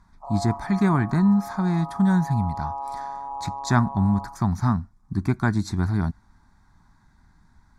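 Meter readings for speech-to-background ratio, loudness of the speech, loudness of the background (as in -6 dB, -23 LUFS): 11.0 dB, -23.5 LUFS, -34.5 LUFS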